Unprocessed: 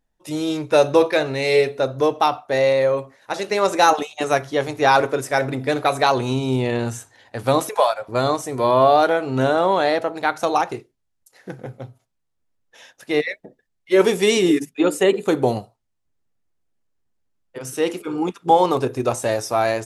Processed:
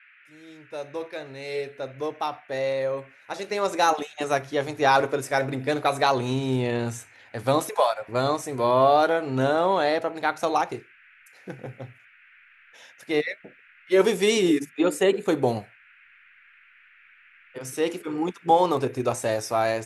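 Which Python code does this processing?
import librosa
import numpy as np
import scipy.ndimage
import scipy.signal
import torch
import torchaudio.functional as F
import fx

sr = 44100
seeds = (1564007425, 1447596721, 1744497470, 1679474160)

y = fx.fade_in_head(x, sr, length_s=4.9)
y = fx.dmg_noise_band(y, sr, seeds[0], low_hz=1400.0, high_hz=2600.0, level_db=-51.0)
y = y * librosa.db_to_amplitude(-4.0)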